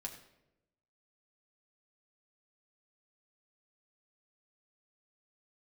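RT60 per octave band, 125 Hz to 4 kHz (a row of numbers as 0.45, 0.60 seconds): 1.2, 1.1, 1.1, 0.75, 0.70, 0.60 seconds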